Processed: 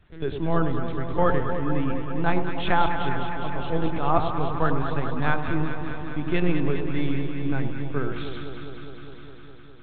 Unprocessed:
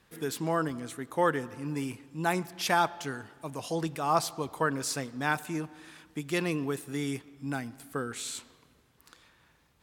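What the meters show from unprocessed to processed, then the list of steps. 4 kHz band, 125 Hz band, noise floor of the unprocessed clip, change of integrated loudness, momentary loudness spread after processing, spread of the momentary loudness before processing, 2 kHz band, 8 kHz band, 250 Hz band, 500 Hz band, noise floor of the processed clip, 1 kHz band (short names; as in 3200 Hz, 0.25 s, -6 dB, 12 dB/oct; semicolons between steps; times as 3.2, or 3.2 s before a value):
0.0 dB, +10.0 dB, -66 dBFS, +5.0 dB, 13 LU, 11 LU, +3.0 dB, under -40 dB, +6.5 dB, +5.0 dB, -40 dBFS, +4.5 dB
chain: LPC vocoder at 8 kHz pitch kept; low shelf 260 Hz +8.5 dB; echo with dull and thin repeats by turns 0.102 s, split 1000 Hz, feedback 88%, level -6 dB; gain +2 dB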